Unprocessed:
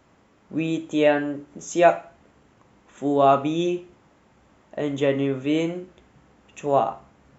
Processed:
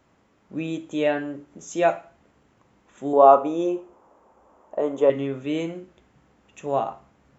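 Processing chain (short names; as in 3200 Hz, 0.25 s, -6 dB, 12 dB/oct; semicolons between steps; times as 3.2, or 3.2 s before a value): 3.13–5.1 graphic EQ 125/500/1000/2000/4000 Hz -12/+8/+10/-6/-8 dB; gain -4 dB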